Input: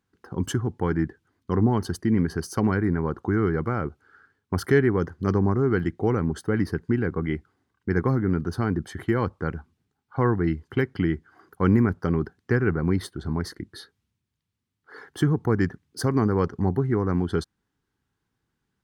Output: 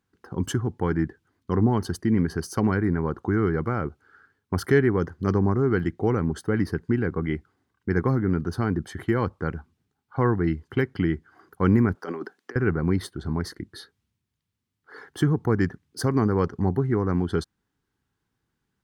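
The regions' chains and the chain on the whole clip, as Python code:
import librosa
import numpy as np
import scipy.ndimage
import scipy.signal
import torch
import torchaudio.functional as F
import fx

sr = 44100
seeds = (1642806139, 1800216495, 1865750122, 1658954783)

y = fx.chain(x, sr, fx.bessel_highpass(hz=390.0, order=4),
    fx.over_compress(threshold_db=-32.0, ratio=-0.5), at=(11.95, 12.56))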